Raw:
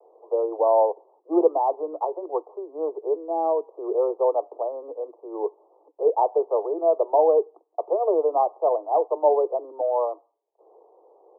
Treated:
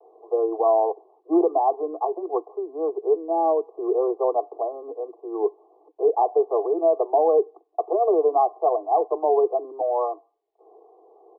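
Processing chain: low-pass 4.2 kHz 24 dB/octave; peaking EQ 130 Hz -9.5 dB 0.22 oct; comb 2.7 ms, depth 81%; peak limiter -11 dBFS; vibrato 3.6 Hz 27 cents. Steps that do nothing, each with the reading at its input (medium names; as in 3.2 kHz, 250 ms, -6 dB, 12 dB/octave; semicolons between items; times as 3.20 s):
low-pass 4.2 kHz: input has nothing above 1.2 kHz; peaking EQ 130 Hz: input has nothing below 290 Hz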